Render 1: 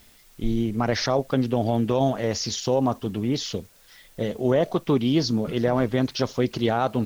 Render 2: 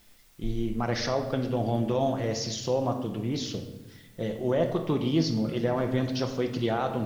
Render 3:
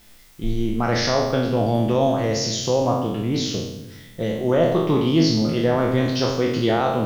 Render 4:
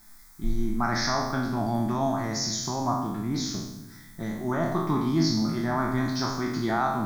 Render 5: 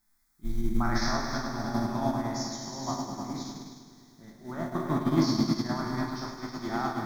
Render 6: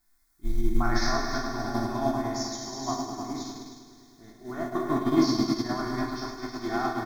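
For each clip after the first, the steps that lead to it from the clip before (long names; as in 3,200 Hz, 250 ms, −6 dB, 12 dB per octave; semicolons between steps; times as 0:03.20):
rectangular room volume 520 cubic metres, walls mixed, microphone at 0.78 metres; level −6 dB
peak hold with a decay on every bin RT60 0.86 s; level +5.5 dB
parametric band 83 Hz −12.5 dB 1.2 octaves; phaser with its sweep stopped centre 1,200 Hz, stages 4
echo machine with several playback heads 104 ms, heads all three, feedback 61%, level −8 dB; expander for the loud parts 2.5 to 1, over −31 dBFS
comb filter 2.8 ms, depth 75%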